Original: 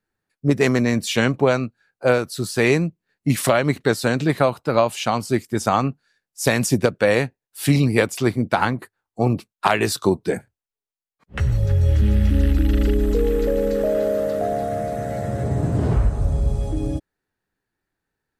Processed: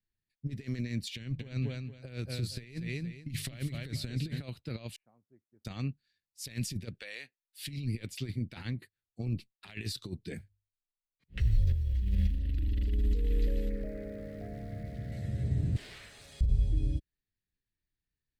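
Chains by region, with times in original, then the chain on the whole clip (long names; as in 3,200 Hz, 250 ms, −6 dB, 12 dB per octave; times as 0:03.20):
0:01.16–0:04.42: low-shelf EQ 110 Hz +11 dB + mains-hum notches 50/100/150 Hz + repeating echo 230 ms, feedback 21%, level −8.5 dB
0:04.96–0:05.65: inverse Chebyshev low-pass filter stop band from 3,100 Hz, stop band 60 dB + first difference
0:07.00–0:07.62: high-pass filter 660 Hz + downward compressor 5 to 1, threshold −24 dBFS
0:10.35–0:12.39: frequency shifter −13 Hz + mains-hum notches 50/100 Hz + noise that follows the level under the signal 32 dB
0:13.69–0:15.12: Chebyshev low-pass filter 2,300 Hz, order 5 + centre clipping without the shift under −42 dBFS
0:15.76–0:16.41: high-pass filter 1,100 Hz + leveller curve on the samples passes 3
whole clip: flat-topped bell 2,900 Hz +10 dB; compressor whose output falls as the input rises −19 dBFS, ratio −0.5; guitar amp tone stack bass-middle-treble 10-0-1; level +1.5 dB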